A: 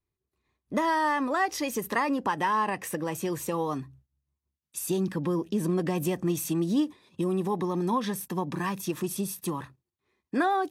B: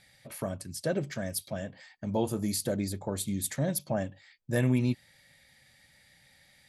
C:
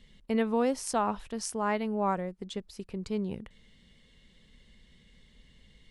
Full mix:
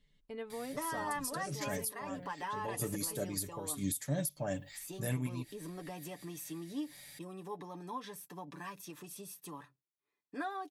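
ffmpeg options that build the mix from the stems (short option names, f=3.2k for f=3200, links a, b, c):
-filter_complex "[0:a]highpass=f=330:p=1,volume=-13.5dB,asplit=2[a][b];[1:a]aemphasis=mode=production:type=50fm,acompressor=threshold=-30dB:ratio=2.5,adelay=500,volume=2.5dB[c];[2:a]volume=-15.5dB[d];[b]apad=whole_len=316799[e];[c][e]sidechaincompress=threshold=-51dB:ratio=8:attack=9.8:release=134[f];[a][f][d]amix=inputs=3:normalize=0,aecho=1:1:6.9:0.59,alimiter=limit=-24dB:level=0:latency=1:release=494"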